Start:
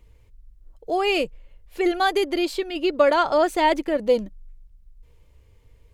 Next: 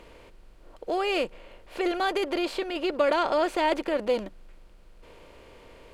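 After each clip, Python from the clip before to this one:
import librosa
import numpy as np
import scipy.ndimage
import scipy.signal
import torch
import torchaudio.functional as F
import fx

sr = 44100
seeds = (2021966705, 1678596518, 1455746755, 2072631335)

y = fx.bin_compress(x, sr, power=0.6)
y = fx.high_shelf(y, sr, hz=12000.0, db=-8.5)
y = F.gain(torch.from_numpy(y), -7.5).numpy()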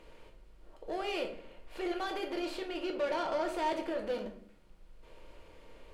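y = 10.0 ** (-21.5 / 20.0) * np.tanh(x / 10.0 ** (-21.5 / 20.0))
y = fx.room_shoebox(y, sr, seeds[0], volume_m3=71.0, walls='mixed', distance_m=0.58)
y = F.gain(torch.from_numpy(y), -8.5).numpy()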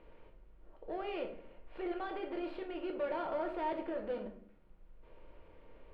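y = fx.air_absorb(x, sr, metres=450.0)
y = F.gain(torch.from_numpy(y), -2.0).numpy()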